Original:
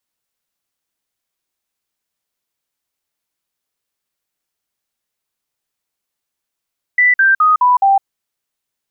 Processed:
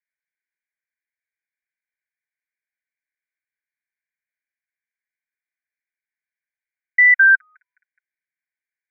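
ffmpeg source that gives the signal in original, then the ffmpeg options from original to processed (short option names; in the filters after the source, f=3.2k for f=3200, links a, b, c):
-f lavfi -i "aevalsrc='0.422*clip(min(mod(t,0.21),0.16-mod(t,0.21))/0.005,0,1)*sin(2*PI*1980*pow(2,-floor(t/0.21)/3)*mod(t,0.21))':d=1.05:s=44100"
-af "asuperpass=centerf=1900:order=20:qfactor=2"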